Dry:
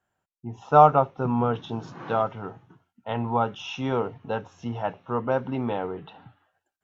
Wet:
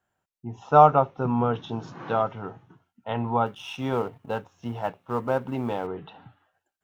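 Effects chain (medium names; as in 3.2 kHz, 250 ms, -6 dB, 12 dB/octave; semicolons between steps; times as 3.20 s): 3.46–5.87 s: companding laws mixed up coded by A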